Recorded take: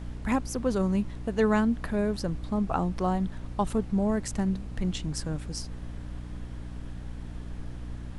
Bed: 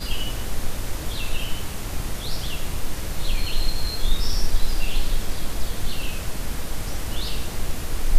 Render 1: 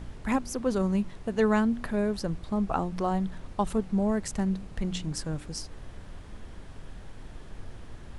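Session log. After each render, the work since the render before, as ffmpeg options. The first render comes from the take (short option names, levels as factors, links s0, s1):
-af "bandreject=f=60:t=h:w=4,bandreject=f=120:t=h:w=4,bandreject=f=180:t=h:w=4,bandreject=f=240:t=h:w=4,bandreject=f=300:t=h:w=4"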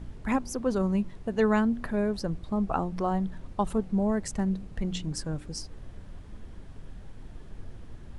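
-af "afftdn=nr=6:nf=-46"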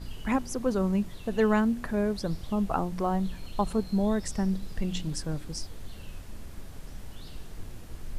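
-filter_complex "[1:a]volume=0.106[s0];[0:a][s0]amix=inputs=2:normalize=0"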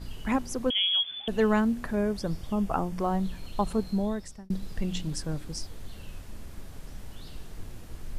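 -filter_complex "[0:a]asettb=1/sr,asplit=3[s0][s1][s2];[s0]atrim=end=0.704[s3];[s1]atrim=start=0.7:end=1.28,asetpts=PTS-STARTPTS,afade=t=in:d=0.004:c=qsin,afade=t=out:st=0.576:d=0.004:c=qsin,lowpass=f=3000:t=q:w=0.5098,lowpass=f=3000:t=q:w=0.6013,lowpass=f=3000:t=q:w=0.9,lowpass=f=3000:t=q:w=2.563,afreqshift=-3500[s4];[s2]atrim=start=1.276[s5];[s3][s4]acrossfade=d=0.004:c1=hsin:c2=qsin[s6];[s6][s5]acrossfade=d=0.004:c1=qsin:c2=hsin,asettb=1/sr,asplit=3[s7][s8][s9];[s7]atrim=end=1.964[s10];[s8]atrim=start=1.96:end=3,asetpts=PTS-STARTPTS,afade=t=in:d=0.004:c=qsin,afade=t=out:st=1.036:d=0.004:c=qsin,bandreject=f=4000:w=7.4[s11];[s9]atrim=start=2.996[s12];[s10][s11]acrossfade=d=0.004:c1=hsin:c2=qsin[s13];[s13][s12]acrossfade=d=0.004:c1=qsin:c2=hsin,asplit=2[s14][s15];[s14]atrim=end=4.5,asetpts=PTS-STARTPTS,afade=t=out:st=3.88:d=0.62[s16];[s15]atrim=start=4.5,asetpts=PTS-STARTPTS,afade=t=in:d=0.004:c=hsin[s17];[s16][s17]concat=n=2:v=0:a=1"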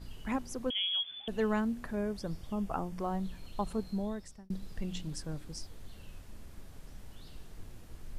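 -af "volume=0.447"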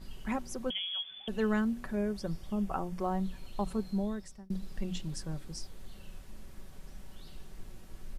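-af "bandreject=f=60:t=h:w=6,bandreject=f=120:t=h:w=6,bandreject=f=180:t=h:w=6,aecho=1:1:5.3:0.41"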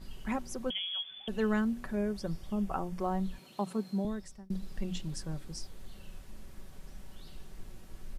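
-filter_complex "[0:a]asettb=1/sr,asplit=3[s0][s1][s2];[s0]atrim=end=3.384[s3];[s1]atrim=start=3.38:end=4.05,asetpts=PTS-STARTPTS,afade=t=in:d=0.004:c=qsin,afade=t=out:st=0.666:d=0.004:c=qsin,highpass=f=150:w=0.5412,highpass=f=150:w=1.3066[s4];[s2]atrim=start=4.046[s5];[s3][s4]acrossfade=d=0.004:c1=hsin:c2=qsin[s6];[s6][s5]acrossfade=d=0.004:c1=qsin:c2=hsin"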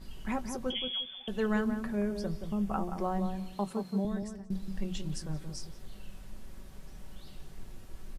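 -filter_complex "[0:a]asplit=2[s0][s1];[s1]adelay=20,volume=0.237[s2];[s0][s2]amix=inputs=2:normalize=0,asplit=2[s3][s4];[s4]adelay=176,lowpass=f=1100:p=1,volume=0.501,asplit=2[s5][s6];[s6]adelay=176,lowpass=f=1100:p=1,volume=0.23,asplit=2[s7][s8];[s8]adelay=176,lowpass=f=1100:p=1,volume=0.23[s9];[s3][s5][s7][s9]amix=inputs=4:normalize=0"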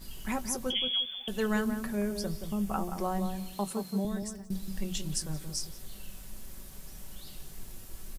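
-af "aemphasis=mode=production:type=75kf"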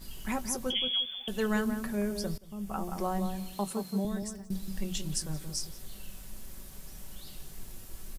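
-filter_complex "[0:a]asplit=2[s0][s1];[s0]atrim=end=2.38,asetpts=PTS-STARTPTS,afade=t=out:st=2.376:d=0.004:c=hsin:silence=0.0891251[s2];[s1]atrim=start=2.38,asetpts=PTS-STARTPTS,afade=t=in:d=0.57:silence=0.0891251[s3];[s2][s3]concat=n=2:v=0:a=1"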